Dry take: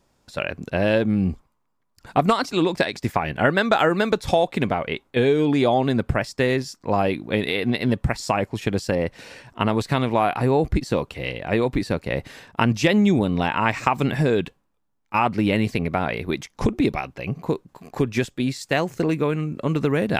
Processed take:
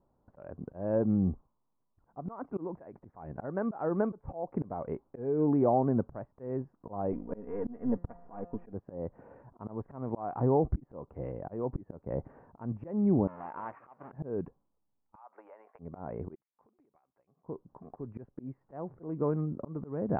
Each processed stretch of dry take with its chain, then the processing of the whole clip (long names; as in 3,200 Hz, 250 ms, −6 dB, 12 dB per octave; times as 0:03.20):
0:07.12–0:08.73: gain on one half-wave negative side −7 dB + comb filter 4.2 ms, depth 64% + hum removal 174 Hz, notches 32
0:13.27–0:14.12: each half-wave held at its own peak + resonant band-pass 4,100 Hz, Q 0.86
0:15.15–0:15.79: high-pass filter 740 Hz 24 dB per octave + downward compressor 8 to 1, threshold −31 dBFS
0:16.35–0:17.43: first difference + downward compressor 16 to 1, threshold −52 dBFS
whole clip: inverse Chebyshev low-pass filter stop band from 3,600 Hz, stop band 60 dB; volume swells 282 ms; level −6.5 dB